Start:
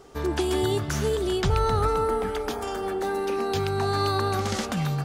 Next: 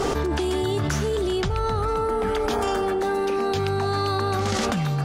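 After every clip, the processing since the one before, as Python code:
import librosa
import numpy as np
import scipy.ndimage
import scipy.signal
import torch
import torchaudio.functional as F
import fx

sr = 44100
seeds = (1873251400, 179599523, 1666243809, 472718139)

y = fx.high_shelf(x, sr, hz=12000.0, db=-10.5)
y = fx.env_flatten(y, sr, amount_pct=100)
y = F.gain(torch.from_numpy(y), -3.5).numpy()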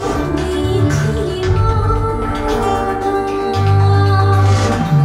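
y = fx.rev_fdn(x, sr, rt60_s=0.89, lf_ratio=1.35, hf_ratio=0.5, size_ms=61.0, drr_db=-7.5)
y = F.gain(torch.from_numpy(y), -1.5).numpy()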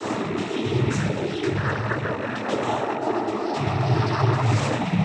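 y = fx.rattle_buzz(x, sr, strikes_db=-21.0, level_db=-16.0)
y = fx.noise_vocoder(y, sr, seeds[0], bands=12)
y = F.gain(torch.from_numpy(y), -7.5).numpy()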